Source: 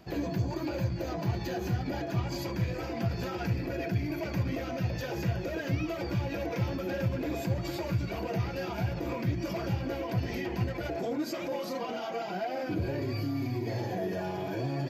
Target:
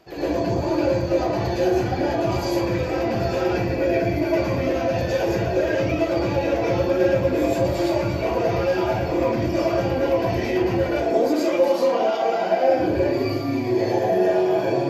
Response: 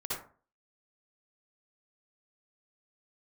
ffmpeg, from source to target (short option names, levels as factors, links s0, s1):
-filter_complex "[0:a]lowshelf=f=280:t=q:w=1.5:g=-7.5[s0];[1:a]atrim=start_sample=2205,asetrate=24255,aresample=44100[s1];[s0][s1]afir=irnorm=-1:irlink=0,volume=1.5"